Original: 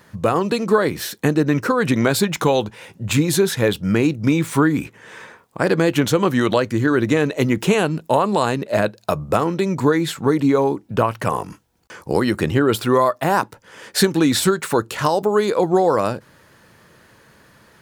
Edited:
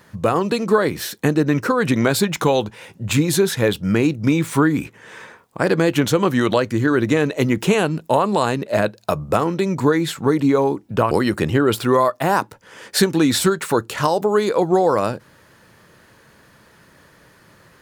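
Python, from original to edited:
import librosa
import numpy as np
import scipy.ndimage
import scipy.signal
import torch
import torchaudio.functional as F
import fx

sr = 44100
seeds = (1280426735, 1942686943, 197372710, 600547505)

y = fx.edit(x, sr, fx.cut(start_s=11.11, length_s=1.01), tone=tone)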